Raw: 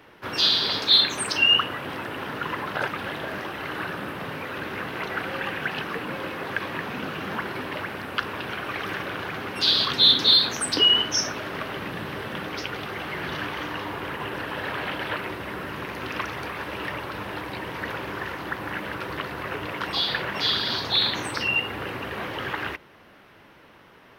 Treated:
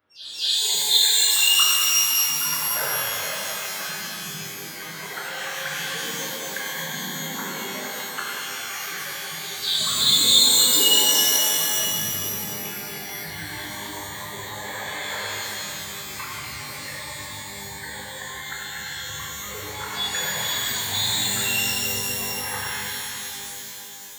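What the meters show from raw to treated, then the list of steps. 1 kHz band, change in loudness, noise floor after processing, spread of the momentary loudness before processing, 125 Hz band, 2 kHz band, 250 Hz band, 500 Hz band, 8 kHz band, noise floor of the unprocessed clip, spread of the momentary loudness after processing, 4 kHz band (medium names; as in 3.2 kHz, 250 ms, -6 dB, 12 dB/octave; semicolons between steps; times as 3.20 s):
-2.5 dB, +3.5 dB, -36 dBFS, 15 LU, -2.0 dB, 0.0 dB, -4.5 dB, -3.5 dB, +16.0 dB, -52 dBFS, 18 LU, +1.5 dB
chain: spectral noise reduction 24 dB; pre-echo 232 ms -15 dB; pitch-shifted reverb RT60 3.5 s, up +12 st, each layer -2 dB, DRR -6.5 dB; trim -6 dB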